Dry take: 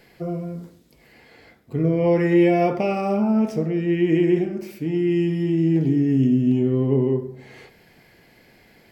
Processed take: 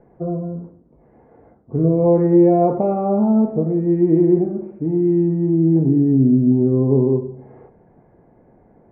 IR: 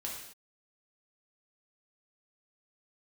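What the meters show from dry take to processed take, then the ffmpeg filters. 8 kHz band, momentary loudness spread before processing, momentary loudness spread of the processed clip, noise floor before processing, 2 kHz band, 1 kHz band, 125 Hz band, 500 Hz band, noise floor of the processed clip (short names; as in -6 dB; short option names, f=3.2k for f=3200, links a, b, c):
n/a, 12 LU, 12 LU, -55 dBFS, under -15 dB, +3.5 dB, +4.0 dB, +4.0 dB, -53 dBFS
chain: -af "lowpass=f=1k:w=0.5412,lowpass=f=1k:w=1.3066,volume=4dB"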